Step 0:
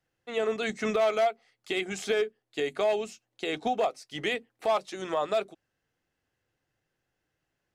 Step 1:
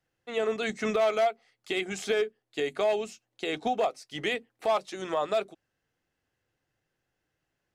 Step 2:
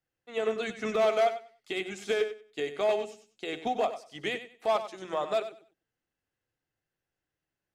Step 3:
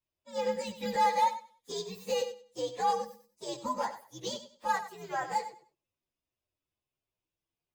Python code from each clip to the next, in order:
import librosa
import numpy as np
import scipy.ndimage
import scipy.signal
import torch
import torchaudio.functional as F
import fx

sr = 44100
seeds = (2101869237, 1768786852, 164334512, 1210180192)

y1 = x
y2 = fx.echo_feedback(y1, sr, ms=96, feedback_pct=26, wet_db=-8)
y2 = fx.upward_expand(y2, sr, threshold_db=-38.0, expansion=1.5)
y3 = fx.partial_stretch(y2, sr, pct=127)